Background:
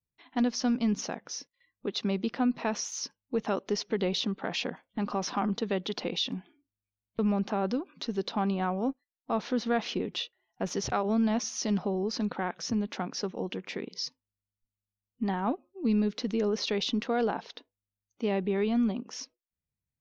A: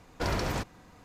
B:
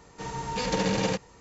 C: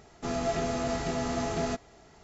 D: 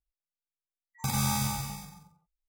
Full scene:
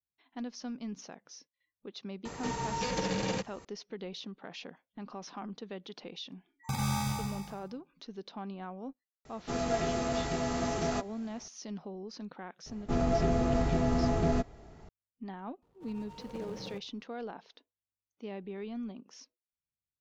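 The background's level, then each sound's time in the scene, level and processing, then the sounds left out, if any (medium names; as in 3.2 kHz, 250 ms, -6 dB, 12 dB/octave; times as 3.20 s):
background -12.5 dB
2.25 s: add B -6 dB + three bands compressed up and down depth 70%
5.65 s: add D -2 dB + treble shelf 6.2 kHz -11 dB
9.25 s: add C -1.5 dB
12.66 s: add C -1.5 dB + tilt EQ -2.5 dB/octave
15.62 s: add B -16.5 dB + median filter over 25 samples
not used: A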